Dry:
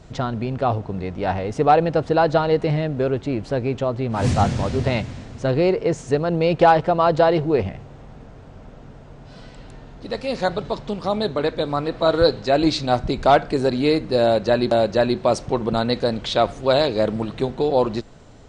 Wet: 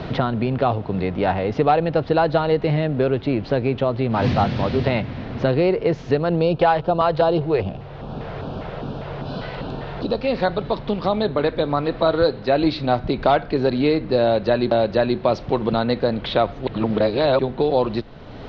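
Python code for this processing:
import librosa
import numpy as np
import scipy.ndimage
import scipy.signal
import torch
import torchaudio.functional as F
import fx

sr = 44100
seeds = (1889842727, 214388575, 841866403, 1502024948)

y = fx.filter_lfo_notch(x, sr, shape='square', hz=2.5, low_hz=250.0, high_hz=2000.0, q=1.2, at=(6.41, 10.22))
y = fx.edit(y, sr, fx.reverse_span(start_s=16.67, length_s=0.72), tone=tone)
y = scipy.signal.sosfilt(scipy.signal.cheby2(4, 40, 7900.0, 'lowpass', fs=sr, output='sos'), y)
y = fx.band_squash(y, sr, depth_pct=70)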